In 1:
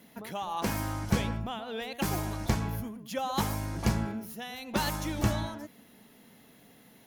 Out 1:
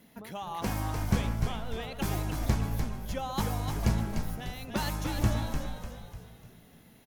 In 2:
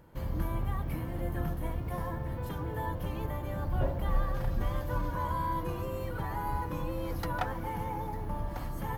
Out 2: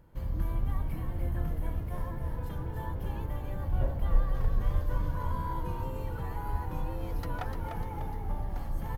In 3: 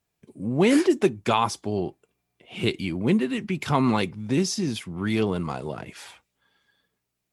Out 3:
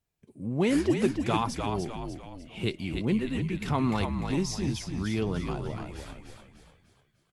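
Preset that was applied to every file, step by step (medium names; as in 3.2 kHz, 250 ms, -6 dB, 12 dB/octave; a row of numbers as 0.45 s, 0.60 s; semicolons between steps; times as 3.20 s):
bass shelf 92 Hz +11 dB; on a send: frequency-shifting echo 298 ms, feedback 44%, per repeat -56 Hz, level -5.5 dB; on the sum: peak normalisation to -12 dBFS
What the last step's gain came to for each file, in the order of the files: -3.5 dB, -6.0 dB, -7.0 dB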